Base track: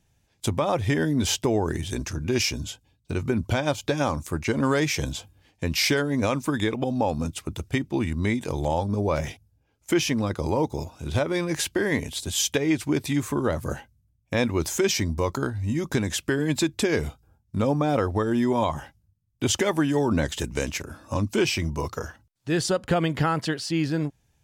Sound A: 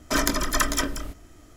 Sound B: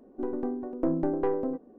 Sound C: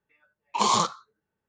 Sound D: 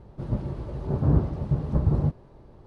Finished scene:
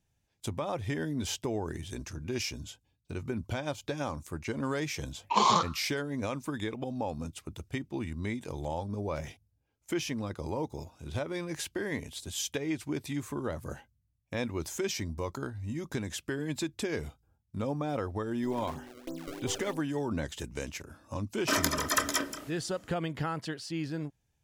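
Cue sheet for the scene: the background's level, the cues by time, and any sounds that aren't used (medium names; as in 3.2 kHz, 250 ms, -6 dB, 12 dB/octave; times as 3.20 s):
base track -10 dB
4.76 s: add C -1 dB + Bessel low-pass 4.3 kHz
18.24 s: add B -13.5 dB + decimation with a swept rate 29×, swing 160% 3.1 Hz
21.37 s: add A -4 dB + Bessel high-pass 240 Hz
not used: D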